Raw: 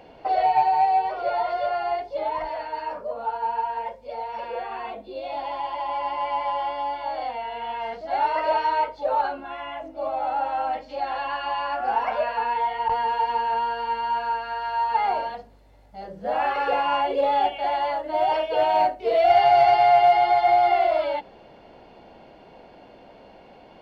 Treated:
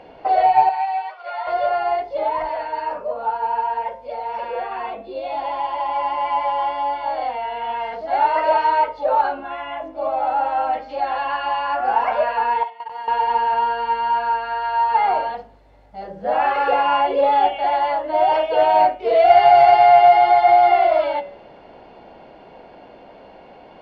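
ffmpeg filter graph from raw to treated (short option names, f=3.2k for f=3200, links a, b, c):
-filter_complex "[0:a]asettb=1/sr,asplit=3[a][b][c];[a]atrim=end=0.694[d];[b]atrim=start=0.69:end=1.47,asetpts=PTS-STARTPTS,afade=t=in:d=0.004:c=qsin,afade=t=out:st=0.776:d=0.004:c=qsin,acrossover=split=4000[e][f];[f]acompressor=threshold=-57dB:ratio=4:attack=1:release=60[g];[e][g]amix=inputs=2:normalize=0,highpass=1.2k,agate=range=-33dB:threshold=-33dB:ratio=3:release=100:detection=peak[h];[c]atrim=start=1.466[i];[d][h]acrossfade=d=0.004:c1=hsin:c2=qsin[j];[j][i]acrossfade=d=0.004:c1=qsin:c2=hsin,asettb=1/sr,asplit=3[k][l][m];[k]atrim=end=12.634[n];[l]atrim=start=12.63:end=13.08,asetpts=PTS-STARTPTS,afade=t=in:d=0.004:c=qsin,afade=t=out:st=0.446:d=0.004:c=qsin,aemphasis=mode=production:type=bsi,agate=range=-22dB:threshold=-26dB:ratio=16:release=100:detection=peak,acompressor=threshold=-32dB:ratio=16:attack=3.2:release=140:knee=1:detection=peak[o];[m]atrim=start=13.076[p];[n][o]acrossfade=d=0.004:c1=hsin:c2=qsin[q];[q][p]acrossfade=d=0.004:c1=qsin:c2=hsin,lowpass=f=2.3k:p=1,lowshelf=f=340:g=-5.5,bandreject=f=113.9:t=h:w=4,bandreject=f=227.8:t=h:w=4,bandreject=f=341.7:t=h:w=4,bandreject=f=455.6:t=h:w=4,bandreject=f=569.5:t=h:w=4,bandreject=f=683.4:t=h:w=4,bandreject=f=797.3:t=h:w=4,bandreject=f=911.2:t=h:w=4,bandreject=f=1.0251k:t=h:w=4,bandreject=f=1.139k:t=h:w=4,bandreject=f=1.2529k:t=h:w=4,bandreject=f=1.3668k:t=h:w=4,bandreject=f=1.4807k:t=h:w=4,bandreject=f=1.5946k:t=h:w=4,bandreject=f=1.7085k:t=h:w=4,bandreject=f=1.8224k:t=h:w=4,bandreject=f=1.9363k:t=h:w=4,bandreject=f=2.0502k:t=h:w=4,bandreject=f=2.1641k:t=h:w=4,bandreject=f=2.278k:t=h:w=4,bandreject=f=2.3919k:t=h:w=4,bandreject=f=2.5058k:t=h:w=4,bandreject=f=2.6197k:t=h:w=4,bandreject=f=2.7336k:t=h:w=4,bandreject=f=2.8475k:t=h:w=4,bandreject=f=2.9614k:t=h:w=4,bandreject=f=3.0753k:t=h:w=4,bandreject=f=3.1892k:t=h:w=4,bandreject=f=3.3031k:t=h:w=4,bandreject=f=3.417k:t=h:w=4,bandreject=f=3.5309k:t=h:w=4,bandreject=f=3.6448k:t=h:w=4,bandreject=f=3.7587k:t=h:w=4,volume=7dB"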